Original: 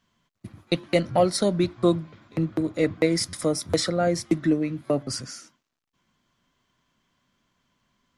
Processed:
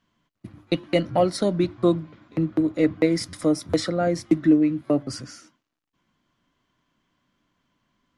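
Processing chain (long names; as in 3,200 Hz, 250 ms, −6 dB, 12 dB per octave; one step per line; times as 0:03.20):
high-shelf EQ 4,800 Hz −8 dB
mains-hum notches 50/100 Hz
hollow resonant body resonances 300/2,900 Hz, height 8 dB, ringing for 100 ms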